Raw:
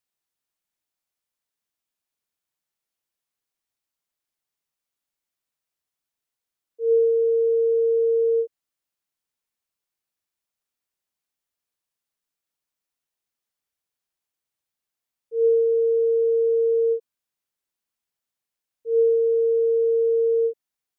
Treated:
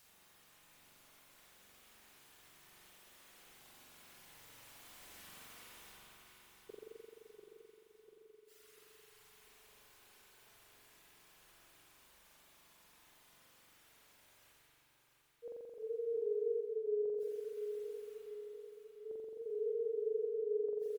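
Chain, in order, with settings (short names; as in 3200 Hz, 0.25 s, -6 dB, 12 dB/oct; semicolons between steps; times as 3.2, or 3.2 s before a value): Doppler pass-by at 5.3, 8 m/s, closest 2.5 m; reverb removal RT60 1.1 s; dynamic EQ 390 Hz, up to -4 dB, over -53 dBFS, Q 0.81; reverse; upward compressor, threshold -50 dBFS; reverse; flipped gate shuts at -50 dBFS, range -38 dB; wow and flutter 110 cents; on a send: feedback echo 0.694 s, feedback 52%, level -7.5 dB; on the sum: spring tank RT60 2.5 s, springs 43 ms, chirp 50 ms, DRR -5 dB; gain +11 dB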